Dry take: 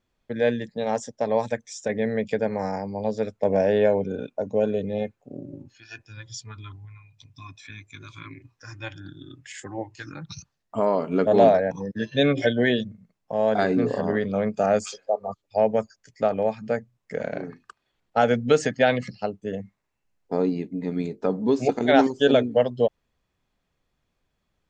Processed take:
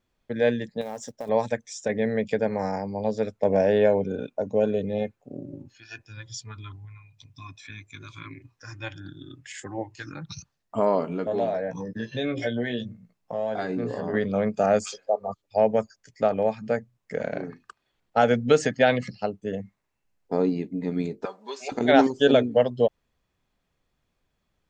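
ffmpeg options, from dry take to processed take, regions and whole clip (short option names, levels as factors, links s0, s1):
-filter_complex "[0:a]asettb=1/sr,asplit=3[s0][s1][s2];[s0]atrim=end=0.814[s3];[s1]atrim=start=0.81:end=1.29,asetpts=PTS-STARTPTS,afade=t=in:d=0.004:c=qsin,afade=t=out:st=0.476:d=0.004:c=qsin,acompressor=threshold=0.0282:ratio=4:attack=3.2:release=140:knee=1:detection=peak,acrusher=bits=6:mode=log:mix=0:aa=0.000001[s4];[s2]atrim=start=1.286[s5];[s3][s4]acrossfade=d=0.004:c1=hsin:c2=qsin[s6];[s6][s5]acrossfade=d=0.004:c1=qsin:c2=hsin,asettb=1/sr,asplit=3[s7][s8][s9];[s7]atrim=end=11.084[s10];[s8]atrim=start=11.08:end=14.14,asetpts=PTS-STARTPTS,afade=t=in:d=0.004:c=qsin,afade=t=out:st=3.056:d=0.004:c=qsin,acompressor=threshold=0.0355:ratio=2.5:attack=3.2:release=140:knee=1:detection=peak,asplit=2[s11][s12];[s12]adelay=17,volume=0.473[s13];[s11][s13]amix=inputs=2:normalize=0,atrim=end_sample=134946[s14];[s9]atrim=start=14.136[s15];[s10][s14]acrossfade=d=0.004:c1=hsin:c2=qsin[s16];[s16][s15]acrossfade=d=0.004:c1=qsin:c2=hsin,asettb=1/sr,asplit=3[s17][s18][s19];[s17]atrim=end=21.254[s20];[s18]atrim=start=21.25:end=21.72,asetpts=PTS-STARTPTS,afade=t=in:d=0.004:c=qsin,afade=t=out:st=0.466:d=0.004:c=qsin,highpass=1200,aecho=1:1:5.1:0.69,atrim=end_sample=20727[s21];[s19]atrim=start=21.716[s22];[s20][s21]acrossfade=d=0.004:c1=hsin:c2=qsin[s23];[s23][s22]acrossfade=d=0.004:c1=qsin:c2=hsin"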